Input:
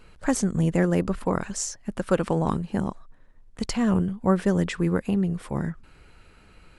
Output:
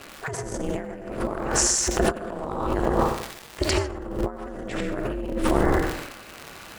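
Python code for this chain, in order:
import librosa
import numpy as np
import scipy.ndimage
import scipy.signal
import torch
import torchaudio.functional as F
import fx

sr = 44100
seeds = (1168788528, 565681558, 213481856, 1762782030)

p1 = scipy.signal.sosfilt(scipy.signal.butter(2, 250.0, 'highpass', fs=sr, output='sos'), x)
p2 = fx.dmg_crackle(p1, sr, seeds[0], per_s=120.0, level_db=-34.0)
p3 = fx.high_shelf(p2, sr, hz=3800.0, db=-6.5)
p4 = p3 + fx.echo_feedback(p3, sr, ms=87, feedback_pct=37, wet_db=-10.5, dry=0)
p5 = fx.rev_gated(p4, sr, seeds[1], gate_ms=170, shape='rising', drr_db=3.0)
p6 = fx.transient(p5, sr, attack_db=-4, sustain_db=9)
p7 = fx.over_compress(p6, sr, threshold_db=-30.0, ratio=-0.5)
p8 = p7 * np.sin(2.0 * np.pi * 150.0 * np.arange(len(p7)) / sr)
y = p8 * librosa.db_to_amplitude(8.5)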